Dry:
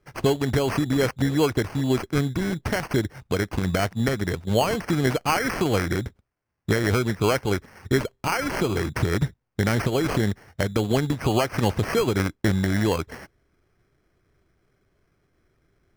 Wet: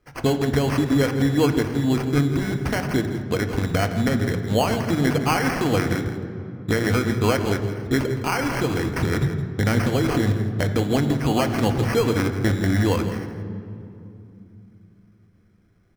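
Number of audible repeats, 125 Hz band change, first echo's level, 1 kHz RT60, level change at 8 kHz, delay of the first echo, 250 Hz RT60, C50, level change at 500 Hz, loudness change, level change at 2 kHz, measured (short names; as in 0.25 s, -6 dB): 1, +3.0 dB, -12.0 dB, 2.6 s, +0.5 dB, 0.165 s, 4.3 s, 8.0 dB, +1.0 dB, +2.0 dB, +1.0 dB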